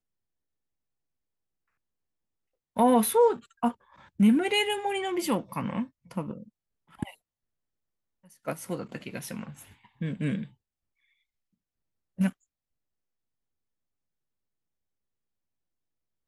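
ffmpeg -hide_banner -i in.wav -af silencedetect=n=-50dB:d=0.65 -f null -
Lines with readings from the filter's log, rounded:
silence_start: 0.00
silence_end: 2.76 | silence_duration: 2.76
silence_start: 7.14
silence_end: 8.25 | silence_duration: 1.10
silence_start: 10.48
silence_end: 12.18 | silence_duration: 1.70
silence_start: 12.32
silence_end: 16.28 | silence_duration: 3.95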